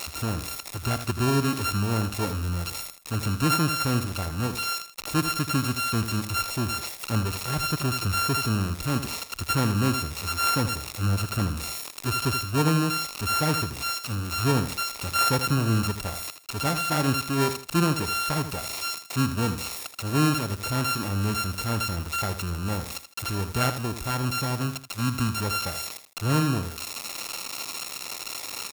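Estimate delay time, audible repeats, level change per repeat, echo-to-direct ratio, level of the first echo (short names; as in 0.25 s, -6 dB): 80 ms, 2, -10.5 dB, -10.0 dB, -10.5 dB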